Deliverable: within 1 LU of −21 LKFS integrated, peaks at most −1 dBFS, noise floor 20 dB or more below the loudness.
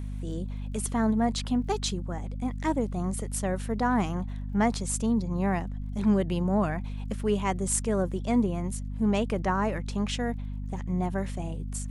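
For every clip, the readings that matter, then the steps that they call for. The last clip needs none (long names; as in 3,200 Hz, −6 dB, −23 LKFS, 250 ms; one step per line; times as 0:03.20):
crackle rate 32 per second; mains hum 50 Hz; hum harmonics up to 250 Hz; level of the hum −32 dBFS; integrated loudness −29.0 LKFS; sample peak −12.5 dBFS; target loudness −21.0 LKFS
→ click removal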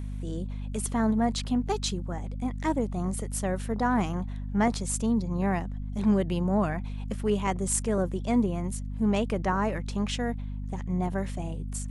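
crackle rate 0 per second; mains hum 50 Hz; hum harmonics up to 250 Hz; level of the hum −32 dBFS
→ mains-hum notches 50/100/150/200/250 Hz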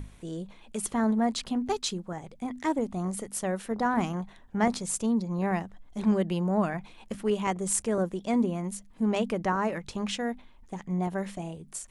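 mains hum none found; integrated loudness −30.0 LKFS; sample peak −13.5 dBFS; target loudness −21.0 LKFS
→ level +9 dB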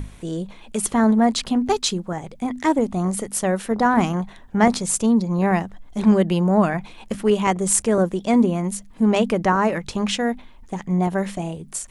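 integrated loudness −21.0 LKFS; sample peak −4.5 dBFS; background noise floor −45 dBFS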